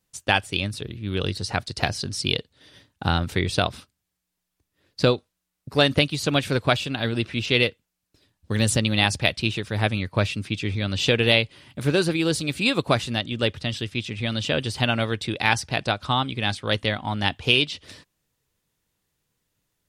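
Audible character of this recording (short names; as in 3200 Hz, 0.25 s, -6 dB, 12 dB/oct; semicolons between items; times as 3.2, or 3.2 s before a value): noise floor -81 dBFS; spectral tilt -4.5 dB/oct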